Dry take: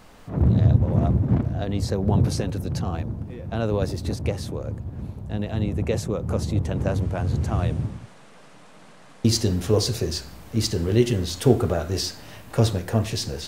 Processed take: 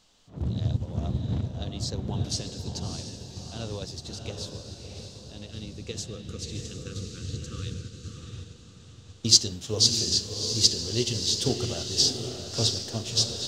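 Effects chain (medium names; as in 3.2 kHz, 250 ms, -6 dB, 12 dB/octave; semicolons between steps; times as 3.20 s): high-order bell 4.8 kHz +15 dB; spectral selection erased 5.51–8.18 s, 520–1100 Hz; on a send: echo that smears into a reverb 669 ms, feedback 53%, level -3.5 dB; on the sum: upward expansion 1.5:1, over -31 dBFS; trim -6 dB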